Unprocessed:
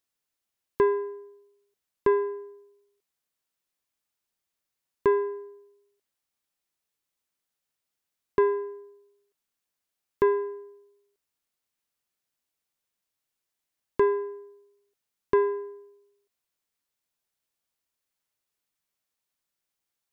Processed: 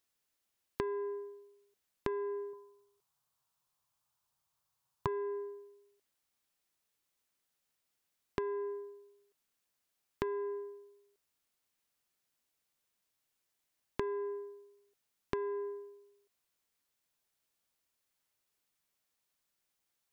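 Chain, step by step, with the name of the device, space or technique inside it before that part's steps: serial compression, peaks first (compressor, threshold -29 dBFS, peak gain reduction 11 dB; compressor 2:1, threshold -38 dBFS, peak gain reduction 7 dB); 2.53–5.07 graphic EQ 125/250/500/1000/2000 Hz +12/-8/-4/+10/-7 dB; gain +1.5 dB

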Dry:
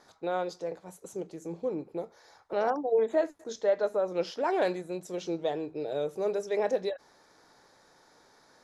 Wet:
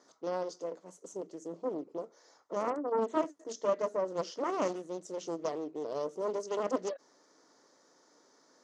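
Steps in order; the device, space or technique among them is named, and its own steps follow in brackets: full-range speaker at full volume (Doppler distortion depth 0.67 ms; speaker cabinet 260–8300 Hz, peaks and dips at 280 Hz +6 dB, 810 Hz -8 dB, 1600 Hz -7 dB, 2400 Hz -8 dB, 3800 Hz -7 dB, 6300 Hz +5 dB); gain -2 dB

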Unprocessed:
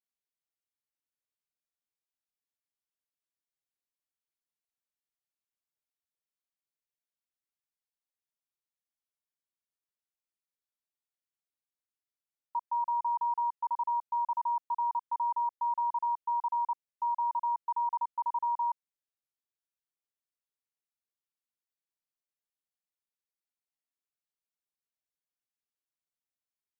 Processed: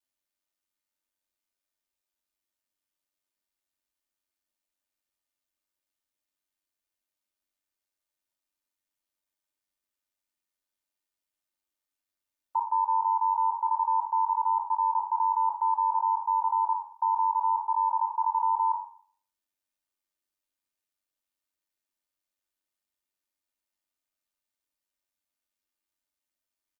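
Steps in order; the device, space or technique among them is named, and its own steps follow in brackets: spectral trails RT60 0.50 s; ring-modulated robot voice (ring modulator 48 Hz; comb 3.3 ms, depth 75%); gain +4.5 dB

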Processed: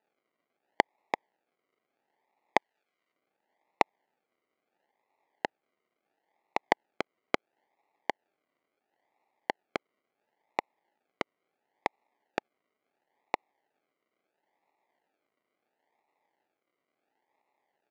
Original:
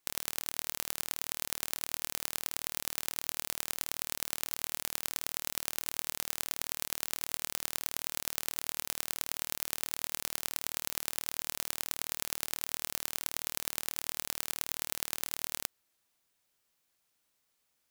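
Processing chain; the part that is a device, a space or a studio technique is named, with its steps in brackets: circuit-bent sampling toy (decimation with a swept rate 40×, swing 60% 0.73 Hz; speaker cabinet 460–5700 Hz, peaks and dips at 510 Hz -3 dB, 850 Hz +9 dB, 1400 Hz -4 dB, 2000 Hz +7 dB, 3700 Hz -4 dB, 5500 Hz -8 dB); 2.58–3.13 tilt shelf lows -5.5 dB, about 1100 Hz

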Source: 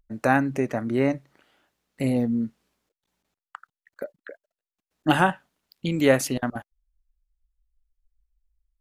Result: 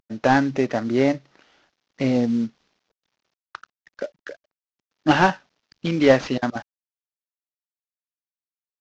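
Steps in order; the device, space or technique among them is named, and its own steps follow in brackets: early wireless headset (HPF 170 Hz 6 dB/oct; CVSD 32 kbps); gain +5 dB

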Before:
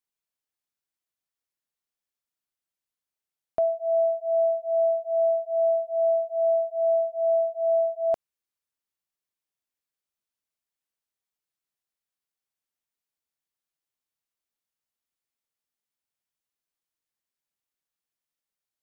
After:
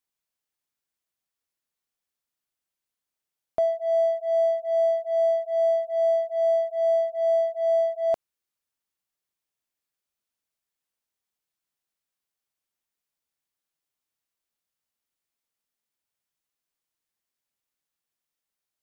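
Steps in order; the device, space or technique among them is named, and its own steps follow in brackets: parallel distortion (in parallel at -10 dB: hard clip -34.5 dBFS, distortion -5 dB)

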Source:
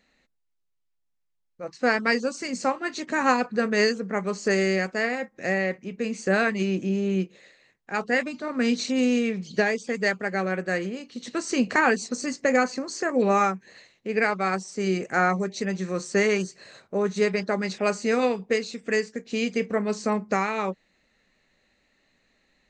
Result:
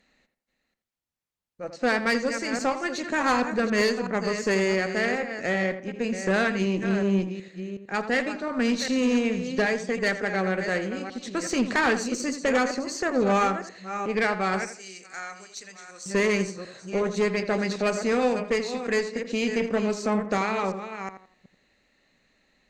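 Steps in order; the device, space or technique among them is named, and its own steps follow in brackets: reverse delay 0.37 s, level -10.5 dB; 14.65–16.06 pre-emphasis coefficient 0.97; rockabilly slapback (tube stage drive 18 dB, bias 0.35; tape echo 84 ms, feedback 34%, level -9 dB, low-pass 2000 Hz); gain +1.5 dB

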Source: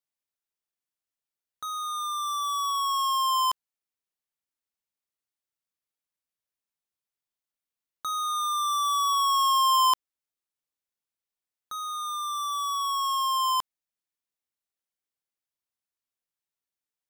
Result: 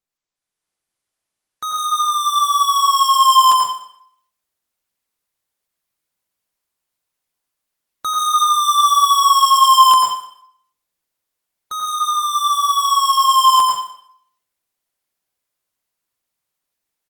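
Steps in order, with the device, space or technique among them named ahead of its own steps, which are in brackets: speakerphone in a meeting room (reverb RT60 0.60 s, pre-delay 86 ms, DRR -1 dB; speakerphone echo 0.21 s, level -21 dB; AGC gain up to 10 dB; Opus 20 kbps 48000 Hz)

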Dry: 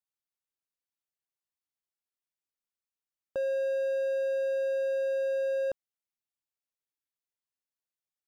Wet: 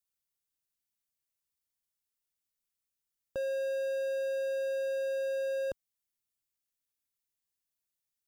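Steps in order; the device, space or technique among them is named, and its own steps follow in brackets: smiley-face EQ (low shelf 130 Hz +8 dB; bell 700 Hz -4.5 dB 2 oct; high shelf 5500 Hz +8 dB)

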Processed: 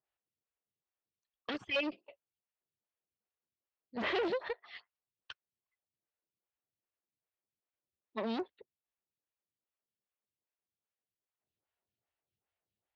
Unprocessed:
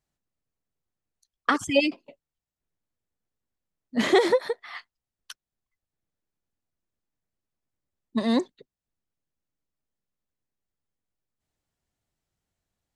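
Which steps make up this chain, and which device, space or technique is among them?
vibe pedal into a guitar amplifier (photocell phaser 2.5 Hz; tube stage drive 29 dB, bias 0.65; speaker cabinet 92–4100 Hz, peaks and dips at 160 Hz -8 dB, 260 Hz -9 dB, 2700 Hz +4 dB)

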